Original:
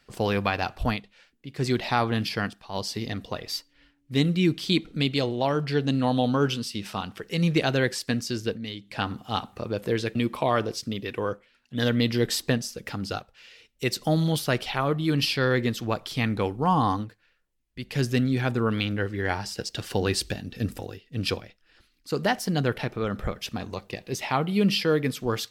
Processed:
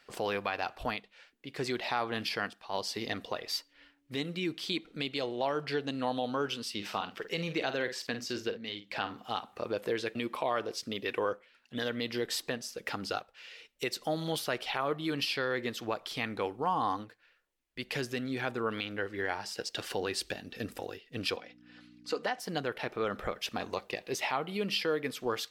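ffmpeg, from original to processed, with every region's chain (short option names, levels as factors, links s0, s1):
-filter_complex "[0:a]asettb=1/sr,asplit=3[s0][s1][s2];[s0]atrim=end=6.744[s3];[s1]atrim=start=6.74:end=9.25,asetpts=PTS-STARTPTS,afade=t=in:d=0.004:c=qsin,afade=t=out:st=2.506:d=0.004:c=qsin,equalizer=f=9900:w=1.9:g=-8.5,asplit=2[s4][s5];[s5]adelay=49,volume=0.282[s6];[s4][s6]amix=inputs=2:normalize=0,atrim=end_sample=110691[s7];[s2]atrim=start=9.246[s8];[s3][s7]acrossfade=d=0.004:c1=hsin:c2=qsin[s9];[s9][s8]acrossfade=d=0.004:c1=qsin:c2=hsin,asettb=1/sr,asplit=3[s10][s11][s12];[s10]atrim=end=21.364[s13];[s11]atrim=start=21.36:end=22.4,asetpts=PTS-STARTPTS,afade=t=in:d=0.004:c=qsin,afade=t=out:st=1.036:d=0.004:c=qsin,aecho=1:1:4:0.51,atrim=end_sample=45864,aeval=exprs='val(0)+0.0126*(sin(2*PI*60*n/s)+sin(2*PI*2*60*n/s)/2+sin(2*PI*3*60*n/s)/3+sin(2*PI*4*60*n/s)/4+sin(2*PI*5*60*n/s)/5)':c=same,highpass=250,lowpass=7600[s14];[s12]atrim=start=22.396[s15];[s13][s14]acrossfade=d=0.004:c1=hsin:c2=qsin[s16];[s16][s15]acrossfade=d=0.004:c1=qsin:c2=hsin,alimiter=limit=0.0841:level=0:latency=1:release=485,bass=f=250:g=-15,treble=f=4000:g=-4,volume=1.33"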